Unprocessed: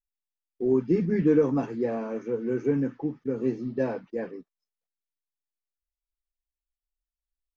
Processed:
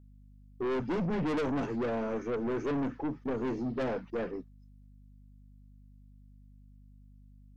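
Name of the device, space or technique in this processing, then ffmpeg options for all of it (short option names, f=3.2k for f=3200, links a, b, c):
valve amplifier with mains hum: -af "aeval=exprs='(tanh(39.8*val(0)+0.2)-tanh(0.2))/39.8':c=same,aeval=exprs='val(0)+0.00141*(sin(2*PI*50*n/s)+sin(2*PI*2*50*n/s)/2+sin(2*PI*3*50*n/s)/3+sin(2*PI*4*50*n/s)/4+sin(2*PI*5*50*n/s)/5)':c=same,volume=3dB"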